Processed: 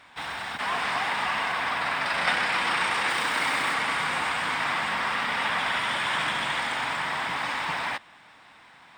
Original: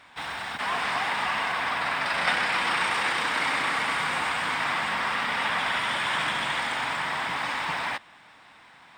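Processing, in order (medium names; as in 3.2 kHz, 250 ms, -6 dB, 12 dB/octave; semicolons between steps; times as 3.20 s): 3.09–3.74 s: treble shelf 11 kHz +10 dB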